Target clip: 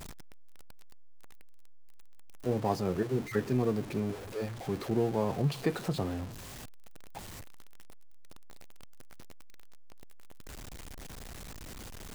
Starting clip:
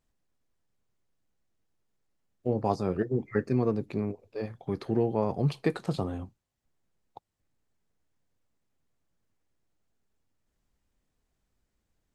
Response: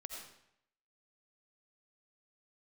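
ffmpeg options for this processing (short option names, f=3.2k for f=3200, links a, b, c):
-af "aeval=exprs='val(0)+0.5*0.0188*sgn(val(0))':c=same,volume=-3.5dB"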